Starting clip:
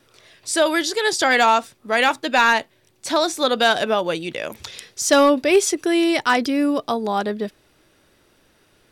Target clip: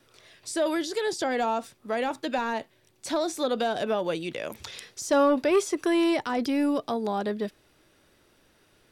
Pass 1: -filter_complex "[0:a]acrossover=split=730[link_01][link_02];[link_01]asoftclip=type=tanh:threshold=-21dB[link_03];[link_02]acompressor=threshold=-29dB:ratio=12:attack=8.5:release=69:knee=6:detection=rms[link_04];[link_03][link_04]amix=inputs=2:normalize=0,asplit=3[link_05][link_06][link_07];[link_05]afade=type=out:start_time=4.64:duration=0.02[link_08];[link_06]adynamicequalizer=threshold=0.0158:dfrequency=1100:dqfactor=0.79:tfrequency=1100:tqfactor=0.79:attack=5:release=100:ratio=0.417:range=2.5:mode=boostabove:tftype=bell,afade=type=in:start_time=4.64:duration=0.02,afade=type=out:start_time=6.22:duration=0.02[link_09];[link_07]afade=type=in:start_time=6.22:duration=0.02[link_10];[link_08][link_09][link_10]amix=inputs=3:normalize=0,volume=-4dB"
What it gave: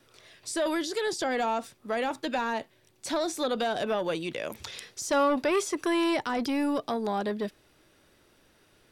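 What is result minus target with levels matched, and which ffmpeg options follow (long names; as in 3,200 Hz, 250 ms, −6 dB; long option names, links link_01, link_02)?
soft clipping: distortion +7 dB
-filter_complex "[0:a]acrossover=split=730[link_01][link_02];[link_01]asoftclip=type=tanh:threshold=-14dB[link_03];[link_02]acompressor=threshold=-29dB:ratio=12:attack=8.5:release=69:knee=6:detection=rms[link_04];[link_03][link_04]amix=inputs=2:normalize=0,asplit=3[link_05][link_06][link_07];[link_05]afade=type=out:start_time=4.64:duration=0.02[link_08];[link_06]adynamicequalizer=threshold=0.0158:dfrequency=1100:dqfactor=0.79:tfrequency=1100:tqfactor=0.79:attack=5:release=100:ratio=0.417:range=2.5:mode=boostabove:tftype=bell,afade=type=in:start_time=4.64:duration=0.02,afade=type=out:start_time=6.22:duration=0.02[link_09];[link_07]afade=type=in:start_time=6.22:duration=0.02[link_10];[link_08][link_09][link_10]amix=inputs=3:normalize=0,volume=-4dB"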